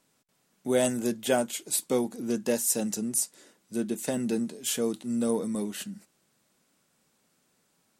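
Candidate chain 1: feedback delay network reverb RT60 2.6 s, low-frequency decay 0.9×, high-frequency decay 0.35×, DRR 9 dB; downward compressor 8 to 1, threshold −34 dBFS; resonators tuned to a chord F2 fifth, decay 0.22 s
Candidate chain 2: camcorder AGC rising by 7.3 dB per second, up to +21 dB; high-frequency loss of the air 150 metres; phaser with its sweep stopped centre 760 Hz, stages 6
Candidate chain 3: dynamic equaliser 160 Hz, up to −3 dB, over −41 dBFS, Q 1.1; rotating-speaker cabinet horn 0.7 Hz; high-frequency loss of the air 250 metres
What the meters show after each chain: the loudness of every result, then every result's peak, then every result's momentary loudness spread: −48.5, −34.0, −33.0 LKFS; −30.5, −15.0, −15.5 dBFS; 7, 12, 12 LU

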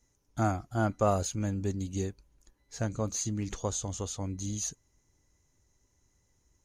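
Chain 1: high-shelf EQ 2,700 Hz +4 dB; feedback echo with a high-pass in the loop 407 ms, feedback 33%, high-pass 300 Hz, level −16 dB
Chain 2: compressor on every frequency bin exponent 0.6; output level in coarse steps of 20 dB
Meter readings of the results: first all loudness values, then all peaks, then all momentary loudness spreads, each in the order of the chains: −31.5, −41.0 LKFS; −13.5, −27.5 dBFS; 17, 21 LU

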